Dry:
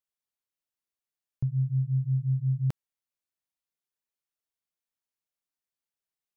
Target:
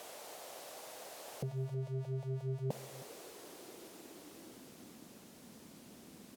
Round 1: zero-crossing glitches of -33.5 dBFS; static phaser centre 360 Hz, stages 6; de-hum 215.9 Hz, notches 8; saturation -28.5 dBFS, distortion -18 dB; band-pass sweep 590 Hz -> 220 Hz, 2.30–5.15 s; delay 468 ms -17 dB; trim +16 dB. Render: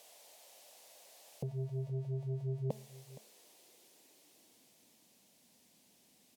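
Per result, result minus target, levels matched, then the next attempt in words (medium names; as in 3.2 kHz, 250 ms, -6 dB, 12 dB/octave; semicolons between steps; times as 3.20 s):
echo 152 ms late; zero-crossing glitches: distortion -8 dB
zero-crossing glitches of -33.5 dBFS; static phaser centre 360 Hz, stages 6; de-hum 215.9 Hz, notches 8; saturation -28.5 dBFS, distortion -18 dB; band-pass sweep 590 Hz -> 220 Hz, 2.30–5.15 s; delay 316 ms -17 dB; trim +16 dB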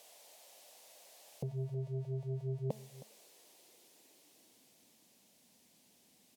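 zero-crossing glitches: distortion -8 dB
zero-crossing glitches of -25.5 dBFS; static phaser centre 360 Hz, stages 6; de-hum 215.9 Hz, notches 8; saturation -28.5 dBFS, distortion -16 dB; band-pass sweep 590 Hz -> 220 Hz, 2.30–5.15 s; delay 316 ms -17 dB; trim +16 dB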